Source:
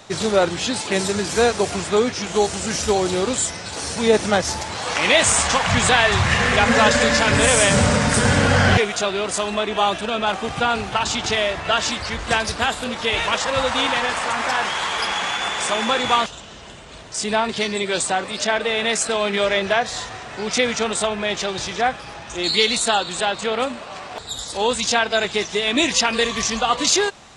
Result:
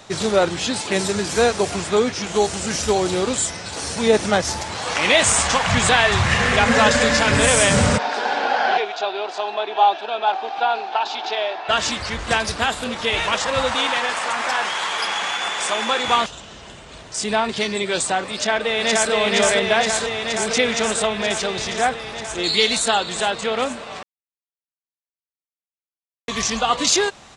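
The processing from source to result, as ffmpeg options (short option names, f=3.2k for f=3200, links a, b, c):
-filter_complex "[0:a]asplit=3[a][b][c];[a]afade=t=out:st=7.97:d=0.02[d];[b]highpass=f=390:w=0.5412,highpass=f=390:w=1.3066,equalizer=f=520:t=q:w=4:g=-9,equalizer=f=790:t=q:w=4:g=9,equalizer=f=1.2k:t=q:w=4:g=-7,equalizer=f=2k:t=q:w=4:g=-9,equalizer=f=3k:t=q:w=4:g=-5,lowpass=f=4.2k:w=0.5412,lowpass=f=4.2k:w=1.3066,afade=t=in:st=7.97:d=0.02,afade=t=out:st=11.68:d=0.02[e];[c]afade=t=in:st=11.68:d=0.02[f];[d][e][f]amix=inputs=3:normalize=0,asettb=1/sr,asplit=3[g][h][i];[g]atrim=end=13.754[j];[h]atrim=start=13.75:end=16.08,asetpts=PTS-STARTPTS,afade=t=in:d=0.004:c=qsin,afade=t=out:st=2.326:d=0.004:c=qsin,highpass=f=350:p=1[k];[i]atrim=start=16.076[l];[j][k]acrossfade=d=0.004:c1=hsin:c2=qsin[m];[m][l]acrossfade=d=0.004:c1=qsin:c2=hsin,asplit=2[n][o];[o]afade=t=in:st=18.33:d=0.01,afade=t=out:st=19.12:d=0.01,aecho=0:1:470|940|1410|1880|2350|2820|3290|3760|4230|4700|5170|5640:0.891251|0.713001|0.570401|0.45632|0.365056|0.292045|0.233636|0.186909|0.149527|0.119622|0.0956973|0.0765579[p];[n][p]amix=inputs=2:normalize=0,asplit=3[q][r][s];[q]atrim=end=24.03,asetpts=PTS-STARTPTS,afade=t=out:st=24.026:d=0.004:c=hsin[t];[r]atrim=start=24.03:end=26.28,asetpts=PTS-STARTPTS,volume=0[u];[s]atrim=start=26.28,asetpts=PTS-STARTPTS,afade=t=in:d=0.004:c=hsin[v];[t][u][v]concat=n=3:v=0:a=1"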